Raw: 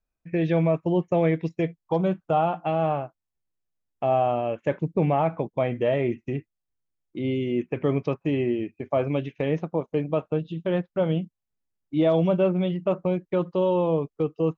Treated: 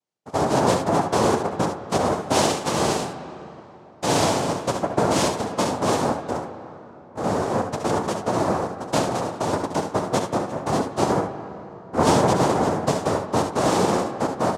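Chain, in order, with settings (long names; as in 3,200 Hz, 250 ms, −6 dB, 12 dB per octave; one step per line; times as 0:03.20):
hum removal 142.8 Hz, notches 12
cochlear-implant simulation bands 2
ambience of single reflections 66 ms −9.5 dB, 77 ms −11 dB
on a send at −12 dB: convolution reverb RT60 3.4 s, pre-delay 123 ms
on the sum: level +1.5 dB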